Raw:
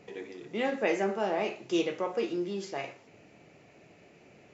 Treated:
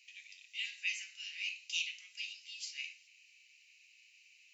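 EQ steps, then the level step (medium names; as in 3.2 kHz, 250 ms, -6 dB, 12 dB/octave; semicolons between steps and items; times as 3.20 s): steep high-pass 2.5 kHz 48 dB/octave; tilt EQ -2 dB/octave; band-stop 3.4 kHz, Q 7.6; +8.5 dB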